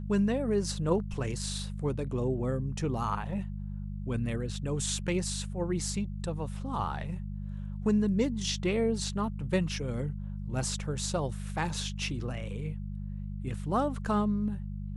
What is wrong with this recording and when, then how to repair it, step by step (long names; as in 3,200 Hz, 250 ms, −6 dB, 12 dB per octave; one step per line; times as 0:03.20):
mains hum 50 Hz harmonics 4 −37 dBFS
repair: hum removal 50 Hz, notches 4